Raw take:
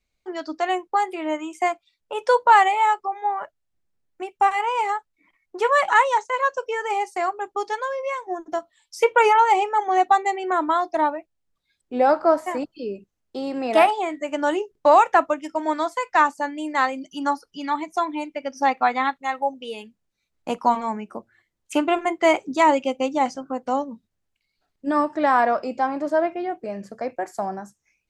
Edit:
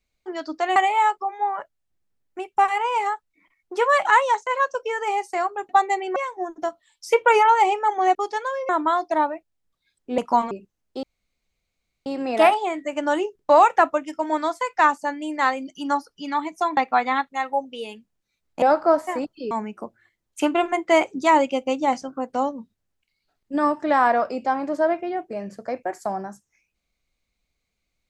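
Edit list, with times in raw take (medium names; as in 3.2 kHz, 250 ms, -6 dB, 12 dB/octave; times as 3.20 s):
0.76–2.59 s: delete
7.52–8.06 s: swap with 10.05–10.52 s
12.01–12.90 s: swap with 20.51–20.84 s
13.42 s: insert room tone 1.03 s
18.13–18.66 s: delete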